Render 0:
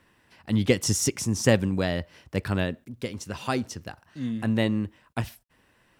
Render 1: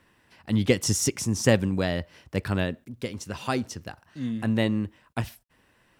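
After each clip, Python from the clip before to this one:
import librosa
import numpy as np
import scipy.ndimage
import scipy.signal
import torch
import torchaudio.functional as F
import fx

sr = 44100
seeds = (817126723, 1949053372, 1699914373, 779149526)

y = x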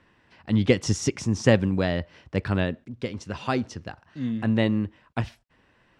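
y = fx.air_absorb(x, sr, metres=110.0)
y = y * 10.0 ** (2.0 / 20.0)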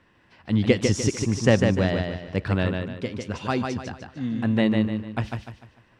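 y = fx.echo_feedback(x, sr, ms=149, feedback_pct=37, wet_db=-4.5)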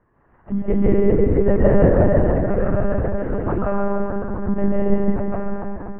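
y = scipy.signal.sosfilt(scipy.signal.butter(4, 1400.0, 'lowpass', fs=sr, output='sos'), x)
y = fx.rev_freeverb(y, sr, rt60_s=3.0, hf_ratio=0.45, predelay_ms=105, drr_db=-8.0)
y = fx.lpc_monotone(y, sr, seeds[0], pitch_hz=200.0, order=10)
y = y * 10.0 ** (-1.0 / 20.0)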